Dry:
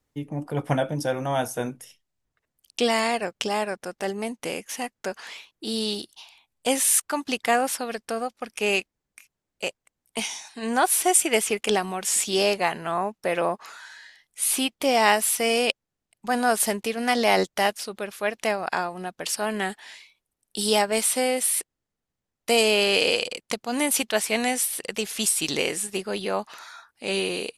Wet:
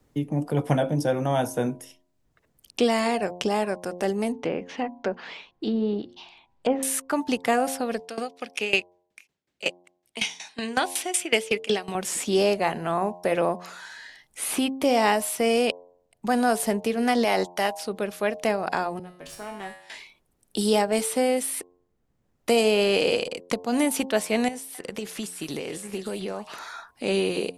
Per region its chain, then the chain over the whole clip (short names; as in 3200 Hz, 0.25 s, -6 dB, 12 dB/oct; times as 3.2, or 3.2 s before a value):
4.32–6.83 notches 60/120/180/240 Hz + treble ducked by the level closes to 1200 Hz, closed at -24.5 dBFS + LPF 3900 Hz
7.99–11.95 weighting filter D + hard clip 0 dBFS + dB-ramp tremolo decaying 5.4 Hz, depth 19 dB
17.24–17.83 low shelf 470 Hz -8.5 dB + mismatched tape noise reduction encoder only
18.99–19.9 tube stage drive 17 dB, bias 0.75 + resonator 51 Hz, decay 0.6 s, harmonics odd, mix 90%
24.48–26.56 compressor 4:1, threshold -35 dBFS + delay with a stepping band-pass 0.266 s, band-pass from 1400 Hz, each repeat 1.4 oct, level -5 dB
whole clip: tilt shelf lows +5 dB, about 840 Hz; de-hum 88.89 Hz, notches 12; three-band squash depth 40%